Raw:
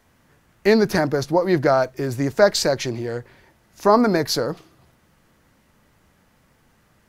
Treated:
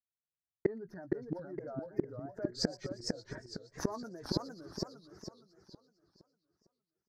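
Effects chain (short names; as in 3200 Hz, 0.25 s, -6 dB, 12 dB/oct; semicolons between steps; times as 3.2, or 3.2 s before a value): spectral contrast raised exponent 1.8; gate -48 dBFS, range -56 dB; doubler 17 ms -12 dB; in parallel at -9.5 dB: one-sided clip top -12 dBFS; on the sum: resonant high shelf 2000 Hz -8 dB, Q 3; flipped gate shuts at -16 dBFS, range -32 dB; bell 5100 Hz +3 dB 0.93 oct; on a send: thin delay 0.118 s, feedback 67%, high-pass 5200 Hz, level -15 dB; on the sum: warbling echo 0.46 s, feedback 37%, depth 196 cents, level -3.5 dB; gain +1 dB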